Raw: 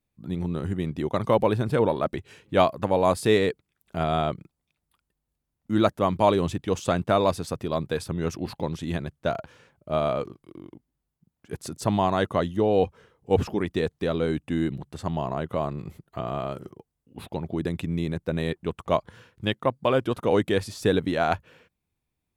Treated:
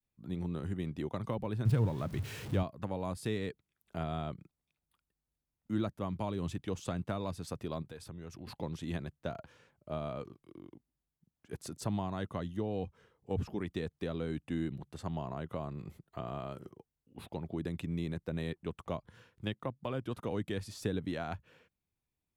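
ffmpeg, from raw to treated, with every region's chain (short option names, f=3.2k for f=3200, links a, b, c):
-filter_complex "[0:a]asettb=1/sr,asplit=3[a][b][c];[a]atrim=end=1.654[d];[b]atrim=start=1.65:end=2.63,asetpts=PTS-STARTPTS,afade=t=in:d=0.004:c=qsin,afade=t=out:st=0.976:d=0.004:c=qsin,aeval=exprs='val(0)+0.5*0.0211*sgn(val(0))':c=same,equalizer=f=110:t=o:w=0.91:g=12[e];[c]atrim=start=2.626[f];[d][e]acrossfade=d=0.004:c1=hsin:c2=qsin[g];[g][f]acrossfade=d=0.004:c1=qsin:c2=hsin,asettb=1/sr,asplit=3[h][i][j];[h]atrim=end=7.824[k];[i]atrim=start=7.82:end=8.47,asetpts=PTS-STARTPTS,afade=t=in:d=0.004:c=qsin,afade=t=out:st=0.646:d=0.004:c=qsin,acompressor=threshold=-38dB:ratio=3:attack=3.2:release=140:knee=1:detection=peak,asubboost=boost=6.5:cutoff=180[l];[j]atrim=start=8.466[m];[k][l]acrossfade=d=0.004:c1=hsin:c2=qsin[n];[n][m]acrossfade=d=0.004:c1=qsin:c2=hsin,adynamicequalizer=threshold=0.0224:dfrequency=500:dqfactor=0.84:tfrequency=500:tqfactor=0.84:attack=5:release=100:ratio=0.375:range=2:mode=cutabove:tftype=bell,acrossover=split=260[o][p];[p]acompressor=threshold=-29dB:ratio=5[q];[o][q]amix=inputs=2:normalize=0,volume=-8dB"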